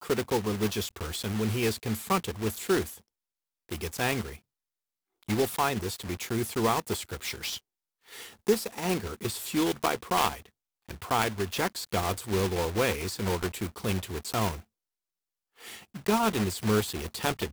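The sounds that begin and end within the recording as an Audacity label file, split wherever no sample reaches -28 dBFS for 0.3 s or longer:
3.720000	4.270000	sound
5.290000	7.560000	sound
8.480000	10.330000	sound
10.910000	14.540000	sound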